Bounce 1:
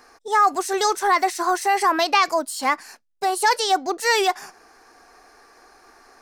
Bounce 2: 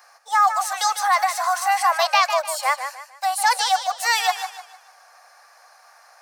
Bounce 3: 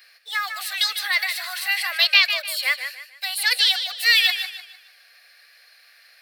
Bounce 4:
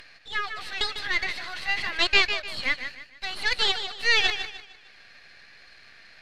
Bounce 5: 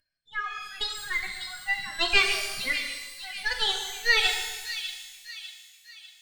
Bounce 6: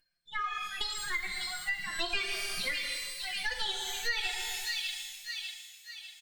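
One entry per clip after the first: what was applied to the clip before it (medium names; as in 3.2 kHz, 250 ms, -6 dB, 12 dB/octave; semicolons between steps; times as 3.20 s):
steep high-pass 530 Hz 96 dB/octave; treble shelf 11 kHz +6 dB; modulated delay 151 ms, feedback 34%, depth 60 cents, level -9 dB
FFT filter 230 Hz 0 dB, 500 Hz -7 dB, 920 Hz -26 dB, 1.8 kHz +2 dB, 2.7 kHz +8 dB, 4.3 kHz +8 dB, 6.3 kHz -13 dB, 13 kHz +4 dB; trim +1 dB
partial rectifier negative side -12 dB; low-pass 3.9 kHz 12 dB/octave; upward compressor, threshold -41 dBFS
expander on every frequency bin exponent 2; feedback echo behind a high-pass 598 ms, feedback 44%, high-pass 3 kHz, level -7 dB; pitch-shifted reverb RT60 1.2 s, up +12 st, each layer -8 dB, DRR 3 dB
comb 5.7 ms, depth 75%; compression 4:1, threshold -31 dBFS, peak gain reduction 15.5 dB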